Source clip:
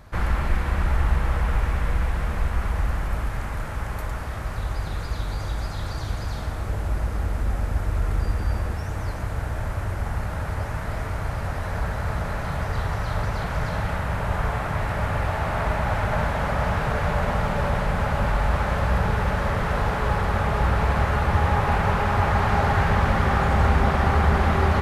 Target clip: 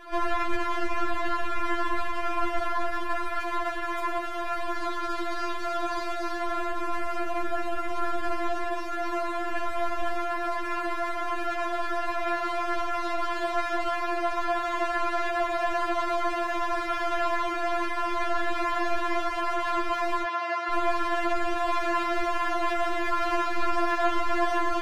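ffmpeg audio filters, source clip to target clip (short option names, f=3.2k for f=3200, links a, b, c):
-filter_complex "[0:a]asettb=1/sr,asplit=3[a][b][c];[a]atrim=end=9.524[d];[b]atrim=start=9.52:end=10.15,asetpts=PTS-STARTPTS,afade=t=in:d=0.004:c=qsin,afade=t=out:st=0.626:d=0.004:c=qsin,aecho=1:1:1.3:0.71,atrim=end_sample=27783[e];[c]atrim=start=10.146[f];[d][e]acrossfade=d=0.004:c1=hsin:c2=qsin[g];[g][f]acrossfade=d=0.004:c1=qsin:c2=hsin,aeval=exprs='max(val(0),0)':c=same,asplit=2[h][i];[i]highpass=f=720:p=1,volume=28dB,asoftclip=type=tanh:threshold=-13dB[j];[h][j]amix=inputs=2:normalize=0,lowpass=f=1k:p=1,volume=-6dB,asplit=3[k][l][m];[k]afade=t=out:st=20.23:d=0.02[n];[l]highpass=520,lowpass=4.8k,afade=t=in:st=20.23:d=0.02,afade=t=out:st=20.7:d=0.02[o];[m]afade=t=in:st=20.7:d=0.02[p];[n][o][p]amix=inputs=3:normalize=0,afftfilt=real='re*4*eq(mod(b,16),0)':imag='im*4*eq(mod(b,16),0)':win_size=2048:overlap=0.75"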